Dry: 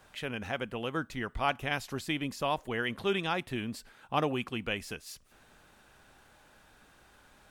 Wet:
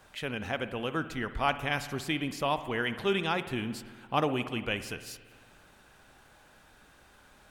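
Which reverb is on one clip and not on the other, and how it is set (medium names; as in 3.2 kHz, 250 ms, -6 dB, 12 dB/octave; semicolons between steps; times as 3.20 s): spring tank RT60 1.7 s, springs 56 ms, chirp 65 ms, DRR 11.5 dB; trim +1.5 dB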